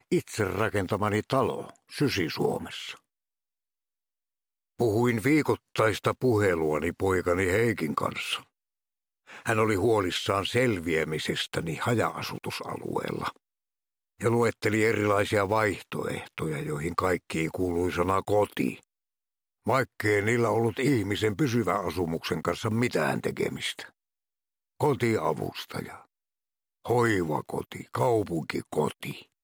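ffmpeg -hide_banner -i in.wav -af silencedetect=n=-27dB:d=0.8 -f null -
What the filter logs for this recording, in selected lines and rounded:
silence_start: 2.91
silence_end: 4.80 | silence_duration: 1.90
silence_start: 8.37
silence_end: 9.46 | silence_duration: 1.09
silence_start: 13.29
silence_end: 14.23 | silence_duration: 0.93
silence_start: 18.70
silence_end: 19.67 | silence_duration: 0.97
silence_start: 23.80
silence_end: 24.81 | silence_duration: 1.01
silence_start: 25.82
silence_end: 26.89 | silence_duration: 1.07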